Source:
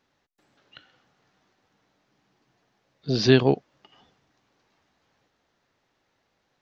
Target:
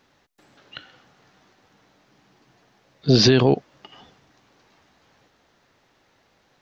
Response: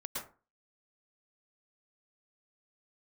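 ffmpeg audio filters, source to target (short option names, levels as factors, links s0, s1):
-af "alimiter=level_in=5.31:limit=0.891:release=50:level=0:latency=1,volume=0.596"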